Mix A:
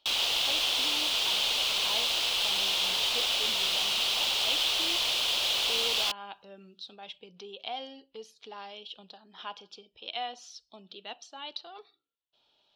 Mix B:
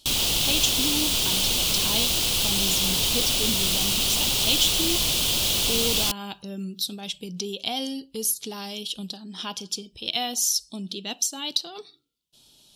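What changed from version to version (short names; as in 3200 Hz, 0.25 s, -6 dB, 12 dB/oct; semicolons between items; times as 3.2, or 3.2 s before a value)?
speech: remove tape spacing loss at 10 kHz 28 dB; master: remove three-band isolator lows -23 dB, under 520 Hz, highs -16 dB, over 4500 Hz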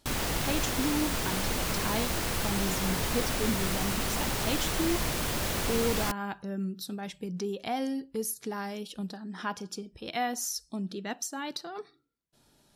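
master: add resonant high shelf 2400 Hz -9.5 dB, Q 3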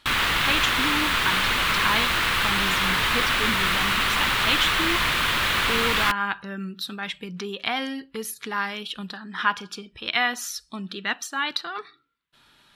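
master: add band shelf 2000 Hz +14.5 dB 2.3 oct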